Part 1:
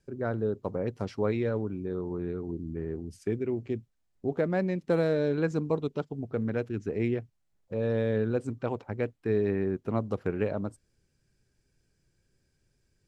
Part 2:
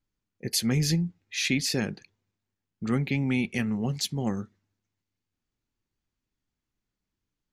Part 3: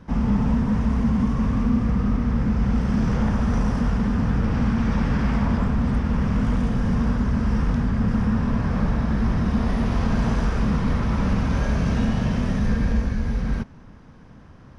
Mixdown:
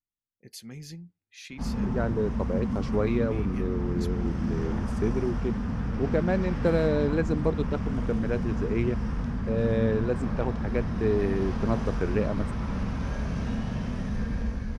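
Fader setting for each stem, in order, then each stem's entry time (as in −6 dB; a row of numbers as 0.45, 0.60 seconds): +1.5, −17.0, −8.5 decibels; 1.75, 0.00, 1.50 seconds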